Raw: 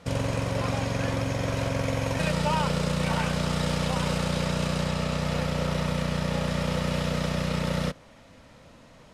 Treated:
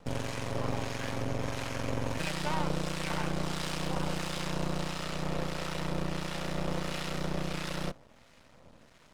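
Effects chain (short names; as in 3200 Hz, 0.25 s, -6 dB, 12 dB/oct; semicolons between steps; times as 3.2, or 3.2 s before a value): half-wave rectifier; harmonic tremolo 1.5 Hz, depth 50%, crossover 1100 Hz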